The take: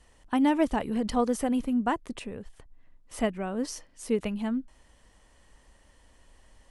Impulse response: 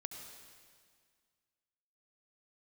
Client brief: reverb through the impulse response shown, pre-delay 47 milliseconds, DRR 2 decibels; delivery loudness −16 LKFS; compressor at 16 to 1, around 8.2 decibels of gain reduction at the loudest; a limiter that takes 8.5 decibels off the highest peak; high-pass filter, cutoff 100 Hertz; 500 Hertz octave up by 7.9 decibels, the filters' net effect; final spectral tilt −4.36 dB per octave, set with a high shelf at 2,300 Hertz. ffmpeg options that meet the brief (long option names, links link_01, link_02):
-filter_complex "[0:a]highpass=100,equalizer=frequency=500:width_type=o:gain=9,highshelf=frequency=2300:gain=5.5,acompressor=threshold=-22dB:ratio=16,alimiter=limit=-21.5dB:level=0:latency=1,asplit=2[link_01][link_02];[1:a]atrim=start_sample=2205,adelay=47[link_03];[link_02][link_03]afir=irnorm=-1:irlink=0,volume=0.5dB[link_04];[link_01][link_04]amix=inputs=2:normalize=0,volume=13.5dB"